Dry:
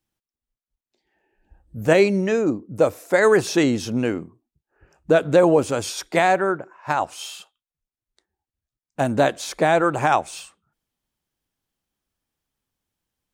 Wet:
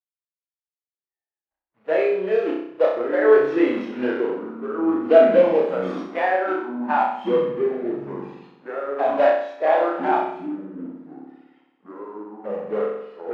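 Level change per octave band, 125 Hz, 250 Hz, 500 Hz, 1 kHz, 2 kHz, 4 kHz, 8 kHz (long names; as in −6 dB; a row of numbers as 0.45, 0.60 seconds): −13.0 dB, −1.0 dB, +2.0 dB, 0.0 dB, −3.5 dB, can't be measured, below −25 dB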